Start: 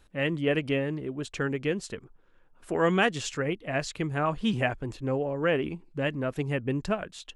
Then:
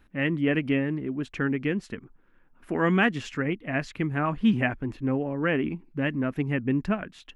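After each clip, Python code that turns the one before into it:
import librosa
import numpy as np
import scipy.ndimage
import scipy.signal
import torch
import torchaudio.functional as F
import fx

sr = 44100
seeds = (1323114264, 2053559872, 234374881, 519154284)

y = fx.graphic_eq_10(x, sr, hz=(250, 500, 2000, 4000, 8000), db=(8, -5, 5, -5, -12))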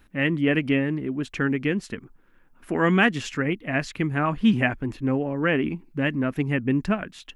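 y = fx.high_shelf(x, sr, hz=4200.0, db=7.0)
y = y * 10.0 ** (2.5 / 20.0)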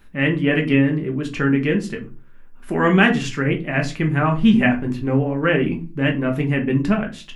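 y = fx.room_shoebox(x, sr, seeds[0], volume_m3=140.0, walls='furnished', distance_m=1.2)
y = y * 10.0 ** (2.0 / 20.0)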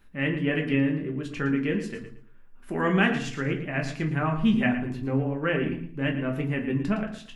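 y = fx.echo_feedback(x, sr, ms=113, feedback_pct=24, wet_db=-11.5)
y = y * 10.0 ** (-8.0 / 20.0)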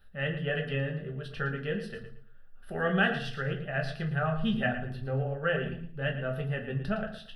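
y = fx.fixed_phaser(x, sr, hz=1500.0, stages=8)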